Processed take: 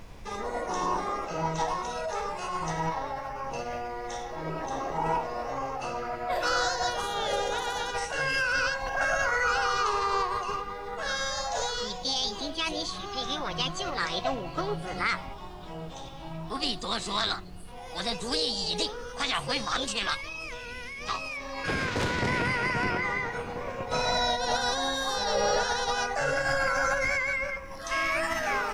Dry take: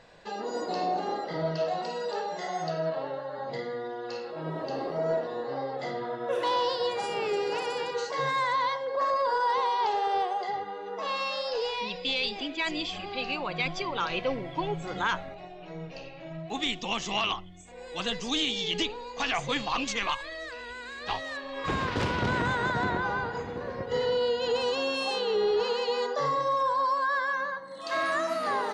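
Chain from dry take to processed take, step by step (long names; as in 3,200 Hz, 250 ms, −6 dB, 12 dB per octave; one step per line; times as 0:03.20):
background noise brown −44 dBFS
formants moved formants +5 semitones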